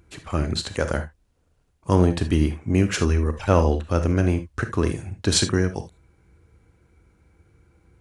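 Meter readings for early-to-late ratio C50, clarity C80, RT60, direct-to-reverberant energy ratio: 11.5 dB, 22.5 dB, not exponential, 9.0 dB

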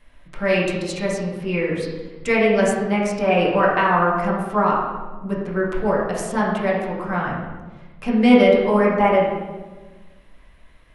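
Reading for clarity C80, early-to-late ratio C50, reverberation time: 3.5 dB, 1.5 dB, 1.3 s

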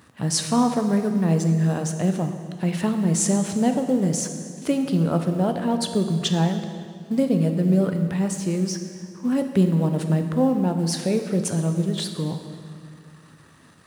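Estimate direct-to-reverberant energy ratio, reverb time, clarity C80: 6.0 dB, 2.2 s, 8.5 dB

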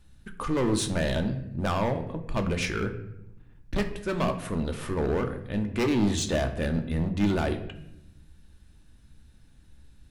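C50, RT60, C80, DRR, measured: 10.5 dB, 0.80 s, 13.0 dB, 5.5 dB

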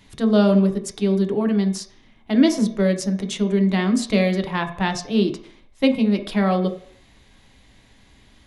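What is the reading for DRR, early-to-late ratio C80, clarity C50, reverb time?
5.0 dB, 14.5 dB, 10.5 dB, 0.60 s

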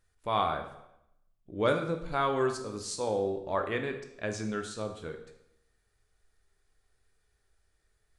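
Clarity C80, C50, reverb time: 11.0 dB, 8.5 dB, 0.80 s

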